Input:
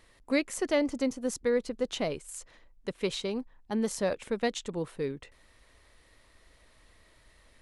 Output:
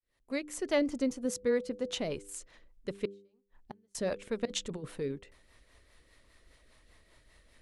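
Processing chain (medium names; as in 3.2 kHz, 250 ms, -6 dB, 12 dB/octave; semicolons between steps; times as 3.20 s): fade-in on the opening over 0.81 s; 1.25–1.98 s: high-pass 46 Hz; 3.05–3.95 s: inverted gate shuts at -29 dBFS, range -39 dB; 4.45–5.01 s: compressor with a negative ratio -35 dBFS, ratio -0.5; rotary cabinet horn 5 Hz; de-hum 99.63 Hz, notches 5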